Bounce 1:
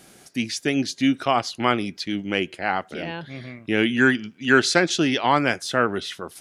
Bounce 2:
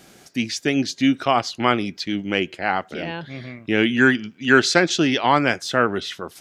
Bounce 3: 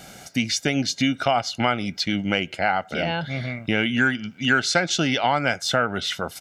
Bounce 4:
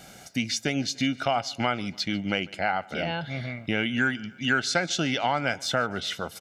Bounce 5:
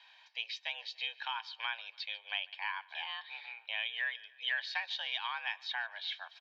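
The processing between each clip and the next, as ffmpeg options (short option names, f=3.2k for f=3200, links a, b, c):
-af "equalizer=f=9.9k:t=o:w=0.31:g=-10,volume=2dB"
-af "aecho=1:1:1.4:0.55,acompressor=threshold=-25dB:ratio=3,volume=5dB"
-af "aecho=1:1:146|292|438|584:0.0631|0.0353|0.0198|0.0111,volume=-4.5dB"
-af "highpass=f=430:t=q:w=0.5412,highpass=f=430:t=q:w=1.307,lowpass=f=3.5k:t=q:w=0.5176,lowpass=f=3.5k:t=q:w=0.7071,lowpass=f=3.5k:t=q:w=1.932,afreqshift=220,aderivative,volume=2.5dB"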